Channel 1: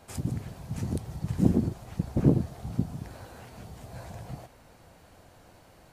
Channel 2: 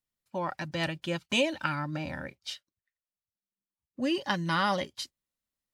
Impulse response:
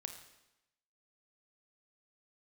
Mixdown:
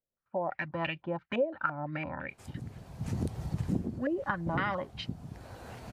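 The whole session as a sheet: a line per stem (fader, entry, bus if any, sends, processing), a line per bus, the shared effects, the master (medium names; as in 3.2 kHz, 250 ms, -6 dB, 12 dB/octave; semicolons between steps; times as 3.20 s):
+1.5 dB, 2.30 s, no send, treble shelf 7.5 kHz -6.5 dB; auto duck -12 dB, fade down 0.35 s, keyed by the second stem
-3.0 dB, 0.00 s, no send, step-sequenced low-pass 5.9 Hz 560–2600 Hz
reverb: none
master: compression 2.5:1, threshold -29 dBFS, peak gain reduction 9.5 dB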